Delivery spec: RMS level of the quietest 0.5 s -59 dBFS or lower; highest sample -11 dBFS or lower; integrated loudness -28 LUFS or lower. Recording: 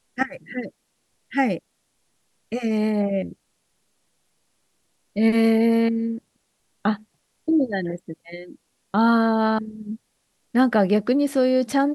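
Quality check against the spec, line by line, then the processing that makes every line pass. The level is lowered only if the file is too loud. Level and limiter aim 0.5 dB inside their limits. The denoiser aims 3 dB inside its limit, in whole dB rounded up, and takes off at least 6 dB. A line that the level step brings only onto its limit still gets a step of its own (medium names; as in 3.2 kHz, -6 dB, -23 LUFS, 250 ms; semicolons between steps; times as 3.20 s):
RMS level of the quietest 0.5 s -70 dBFS: pass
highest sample -8.0 dBFS: fail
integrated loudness -22.5 LUFS: fail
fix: trim -6 dB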